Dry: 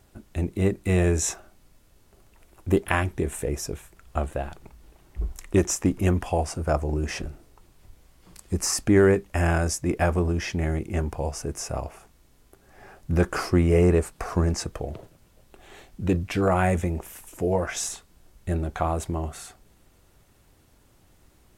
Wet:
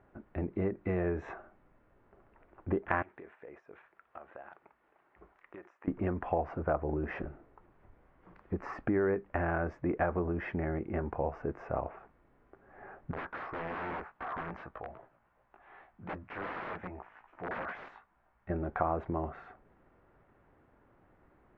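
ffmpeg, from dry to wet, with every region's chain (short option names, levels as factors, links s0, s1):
-filter_complex "[0:a]asettb=1/sr,asplit=3[s0][s1][s2];[s0]atrim=end=3.024[s3];[s1]atrim=start=3.02:end=5.88,asetpts=PTS-STARTPTS,afade=t=in:d=0.004:c=qsin,afade=t=out:st=2.856:d=0.004:c=qsin,highpass=f=1300:p=1,acompressor=threshold=0.00794:ratio=6:attack=3.2:release=140:knee=1:detection=peak[s4];[s2]atrim=start=5.876[s5];[s3][s4]acrossfade=d=0.004:c1=hsin:c2=qsin[s6];[s6][s5]acrossfade=d=0.004:c1=qsin:c2=hsin,asettb=1/sr,asplit=3[s7][s8][s9];[s7]atrim=end=13.114[s10];[s8]atrim=start=13.11:end=18.5,asetpts=PTS-STARTPTS,afade=t=in:d=0.004:c=qsin,afade=t=out:st=5.386:d=0.004:c=qsin,lowshelf=f=620:t=q:w=1.5:g=-8,flanger=delay=15:depth=3.4:speed=2.6,aeval=exprs='(mod(28.2*val(0)+1,2)-1)/28.2':c=same[s11];[s9]atrim=start=18.496[s12];[s10][s11]acrossfade=d=0.004:c1=hsin:c2=qsin[s13];[s13][s12]acrossfade=d=0.004:c1=qsin:c2=hsin,lowpass=f=1800:w=0.5412,lowpass=f=1800:w=1.3066,acompressor=threshold=0.0631:ratio=6,lowshelf=f=160:g=-12"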